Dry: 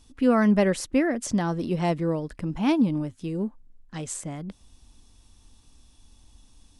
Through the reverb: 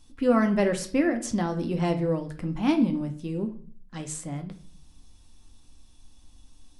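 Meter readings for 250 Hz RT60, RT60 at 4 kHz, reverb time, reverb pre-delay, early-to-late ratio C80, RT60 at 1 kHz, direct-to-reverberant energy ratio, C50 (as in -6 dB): 0.65 s, 0.40 s, 0.45 s, 3 ms, 17.0 dB, 0.45 s, 4.5 dB, 12.0 dB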